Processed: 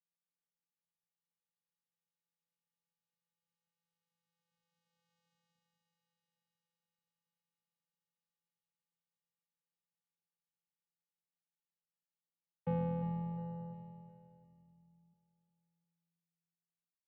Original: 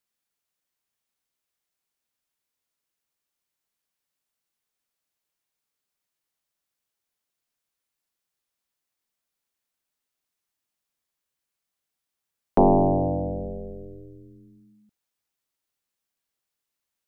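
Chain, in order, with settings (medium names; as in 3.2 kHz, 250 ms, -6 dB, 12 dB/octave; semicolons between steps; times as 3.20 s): Doppler pass-by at 5.22 s, 21 m/s, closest 8.6 m; high-pass 130 Hz; in parallel at 0 dB: peak limiter -53.5 dBFS, peak gain reduction 19.5 dB; on the sum: vocoder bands 4, square 169 Hz; on a send: feedback delay 354 ms, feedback 44%, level -11 dB; on the sum: trim +7.5 dB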